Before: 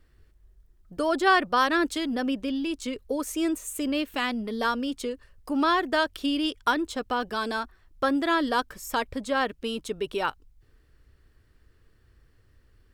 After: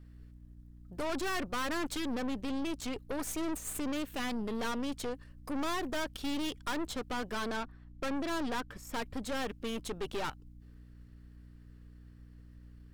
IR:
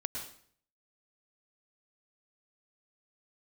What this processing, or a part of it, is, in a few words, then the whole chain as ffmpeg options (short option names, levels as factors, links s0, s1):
valve amplifier with mains hum: -filter_complex "[0:a]asettb=1/sr,asplit=3[s0][s1][s2];[s0]atrim=end=7.454[s3];[s1]atrim=start=7.45:end=8.96,asetpts=PTS-STARTPTS,afade=t=in:d=0.004:c=qsin,afade=t=out:st=1.506:d=0.004:c=qsin,highshelf=f=5200:g=-12[s4];[s2]atrim=start=8.956[s5];[s3][s4]acrossfade=d=0.004:c1=hsin:c2=qsin[s6];[s6][s5]acrossfade=d=0.004:c1=qsin:c2=hsin,aeval=exprs='(tanh(50.1*val(0)+0.7)-tanh(0.7))/50.1':c=same,aeval=exprs='val(0)+0.00224*(sin(2*PI*60*n/s)+sin(2*PI*2*60*n/s)/2+sin(2*PI*3*60*n/s)/3+sin(2*PI*4*60*n/s)/4+sin(2*PI*5*60*n/s)/5)':c=same,volume=1.12"